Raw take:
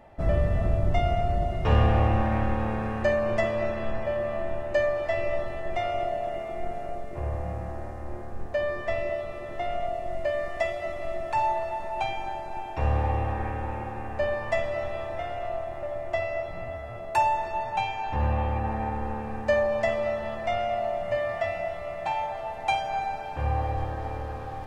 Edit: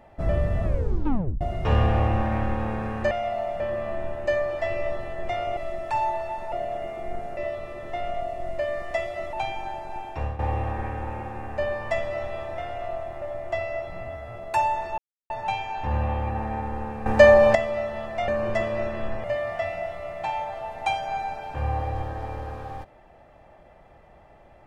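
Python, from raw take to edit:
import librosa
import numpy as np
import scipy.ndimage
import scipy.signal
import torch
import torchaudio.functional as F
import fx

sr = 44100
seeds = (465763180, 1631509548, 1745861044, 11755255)

y = fx.edit(x, sr, fx.tape_stop(start_s=0.64, length_s=0.77),
    fx.swap(start_s=3.11, length_s=0.96, other_s=20.57, other_length_s=0.49),
    fx.cut(start_s=6.89, length_s=2.14),
    fx.move(start_s=10.99, length_s=0.95, to_s=6.04),
    fx.fade_out_to(start_s=12.6, length_s=0.4, curve='qsin', floor_db=-15.0),
    fx.insert_silence(at_s=17.59, length_s=0.32),
    fx.clip_gain(start_s=19.35, length_s=0.49, db=10.5), tone=tone)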